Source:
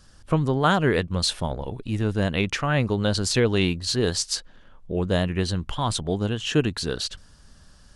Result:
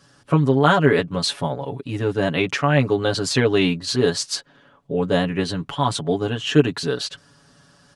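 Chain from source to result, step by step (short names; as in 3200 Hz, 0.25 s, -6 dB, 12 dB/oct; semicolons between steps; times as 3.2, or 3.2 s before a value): HPF 150 Hz 12 dB/oct; high shelf 3900 Hz -7 dB; comb 7.1 ms, depth 85%; gain +3 dB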